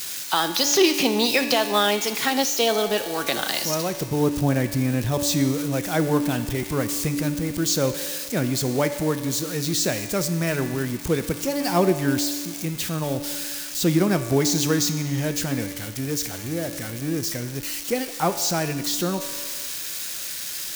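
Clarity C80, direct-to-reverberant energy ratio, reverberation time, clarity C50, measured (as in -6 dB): 11.0 dB, 8.0 dB, 1.8 s, 9.5 dB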